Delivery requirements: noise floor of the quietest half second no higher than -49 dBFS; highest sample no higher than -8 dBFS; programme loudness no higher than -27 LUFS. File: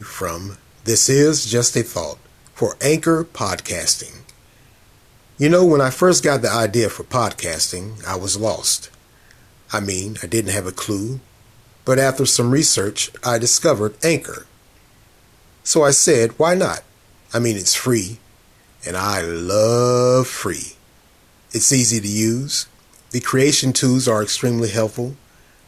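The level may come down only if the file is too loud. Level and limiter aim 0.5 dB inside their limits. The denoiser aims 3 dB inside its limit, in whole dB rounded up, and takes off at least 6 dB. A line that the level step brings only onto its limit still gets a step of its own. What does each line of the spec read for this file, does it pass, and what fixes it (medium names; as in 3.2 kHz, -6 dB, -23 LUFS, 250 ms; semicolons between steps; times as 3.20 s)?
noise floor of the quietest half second -52 dBFS: pass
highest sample -4.0 dBFS: fail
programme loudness -17.5 LUFS: fail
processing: trim -10 dB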